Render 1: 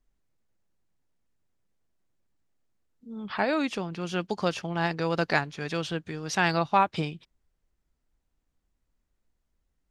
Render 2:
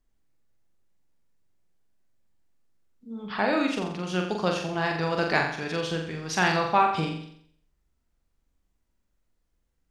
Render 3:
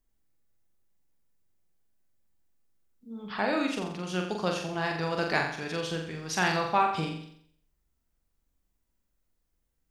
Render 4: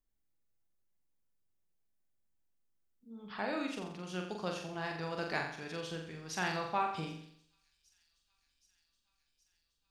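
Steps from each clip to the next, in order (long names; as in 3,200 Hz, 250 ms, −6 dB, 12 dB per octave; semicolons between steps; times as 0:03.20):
flutter between parallel walls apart 7.5 metres, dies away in 0.64 s
high-shelf EQ 10,000 Hz +11 dB; level −3.5 dB
delay with a high-pass on its return 772 ms, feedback 73%, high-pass 5,400 Hz, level −21 dB; level −8.5 dB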